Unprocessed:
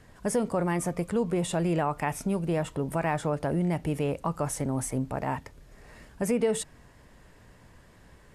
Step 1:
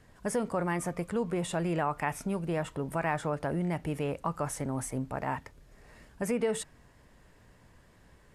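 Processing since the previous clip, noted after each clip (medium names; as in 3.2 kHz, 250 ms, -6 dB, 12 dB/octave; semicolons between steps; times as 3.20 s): dynamic bell 1.5 kHz, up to +5 dB, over -43 dBFS, Q 0.84; trim -4.5 dB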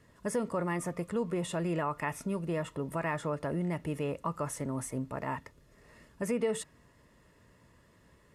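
comb of notches 780 Hz; trim -1 dB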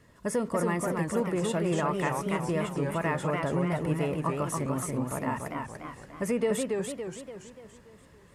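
modulated delay 286 ms, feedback 49%, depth 174 cents, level -3.5 dB; trim +3 dB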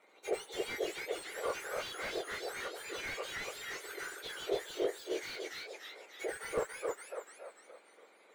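spectrum inverted on a logarithmic axis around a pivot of 2 kHz; band-pass filter 1.2 kHz, Q 0.59; slew-rate limiter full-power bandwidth 17 Hz; trim +4 dB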